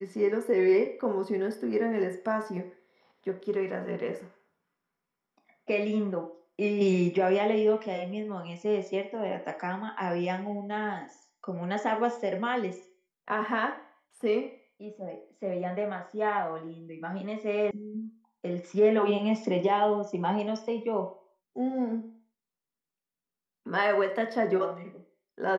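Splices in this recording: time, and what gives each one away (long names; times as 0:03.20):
0:17.71: cut off before it has died away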